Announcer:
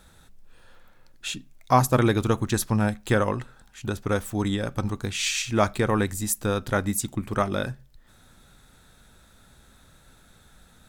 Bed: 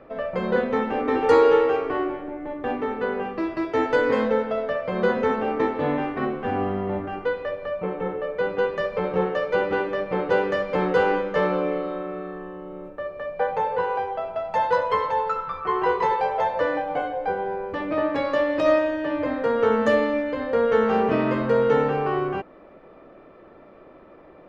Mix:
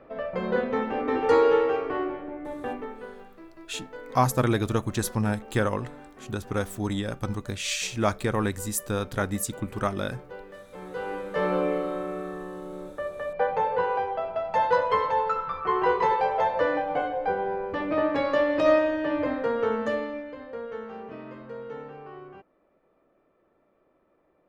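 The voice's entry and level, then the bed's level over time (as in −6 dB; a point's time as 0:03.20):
2.45 s, −3.0 dB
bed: 0:02.61 −3.5 dB
0:03.29 −21 dB
0:10.70 −21 dB
0:11.56 −1 dB
0:19.20 −1 dB
0:20.95 −19 dB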